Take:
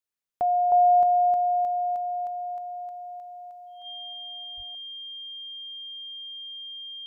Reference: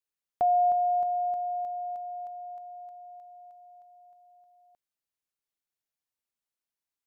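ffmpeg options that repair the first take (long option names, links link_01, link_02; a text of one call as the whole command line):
ffmpeg -i in.wav -filter_complex "[0:a]bandreject=frequency=3200:width=30,asplit=3[link_01][link_02][link_03];[link_01]afade=type=out:start_time=4.56:duration=0.02[link_04];[link_02]highpass=frequency=140:width=0.5412,highpass=frequency=140:width=1.3066,afade=type=in:start_time=4.56:duration=0.02,afade=type=out:start_time=4.68:duration=0.02[link_05];[link_03]afade=type=in:start_time=4.68:duration=0.02[link_06];[link_04][link_05][link_06]amix=inputs=3:normalize=0,asetnsamples=nb_out_samples=441:pad=0,asendcmd='0.72 volume volume -8dB',volume=0dB" out.wav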